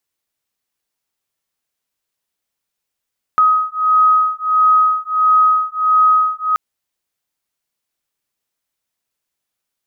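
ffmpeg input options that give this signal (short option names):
-f lavfi -i "aevalsrc='0.211*(sin(2*PI*1260*t)+sin(2*PI*1261.5*t))':d=3.18:s=44100"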